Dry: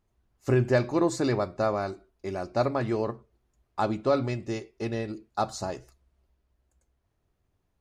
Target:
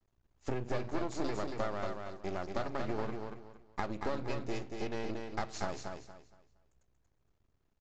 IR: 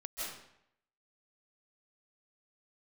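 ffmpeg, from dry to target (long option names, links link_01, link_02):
-af "aresample=16000,aeval=exprs='max(val(0),0)':channel_layout=same,aresample=44100,acompressor=threshold=-31dB:ratio=6,aecho=1:1:233|466|699|932:0.562|0.152|0.041|0.0111"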